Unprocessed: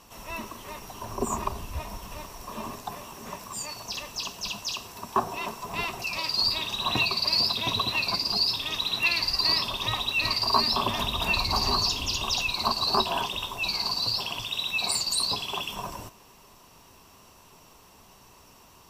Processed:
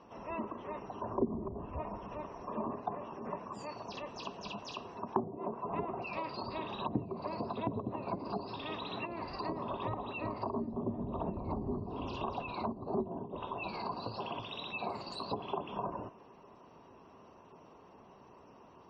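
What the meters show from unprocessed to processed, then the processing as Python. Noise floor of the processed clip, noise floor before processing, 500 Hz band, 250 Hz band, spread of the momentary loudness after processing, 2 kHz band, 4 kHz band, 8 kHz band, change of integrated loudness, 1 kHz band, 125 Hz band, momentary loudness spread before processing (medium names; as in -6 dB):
-58 dBFS, -54 dBFS, -1.5 dB, 0.0 dB, 20 LU, -17.0 dB, -24.5 dB, under -25 dB, -13.5 dB, -8.0 dB, -5.0 dB, 16 LU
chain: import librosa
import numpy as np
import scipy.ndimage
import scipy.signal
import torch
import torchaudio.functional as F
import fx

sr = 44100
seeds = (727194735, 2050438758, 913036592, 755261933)

y = fx.bandpass_q(x, sr, hz=400.0, q=0.68)
y = fx.spec_gate(y, sr, threshold_db=-30, keep='strong')
y = fx.env_lowpass_down(y, sr, base_hz=320.0, full_db=-30.5)
y = F.gain(torch.from_numpy(y), 2.5).numpy()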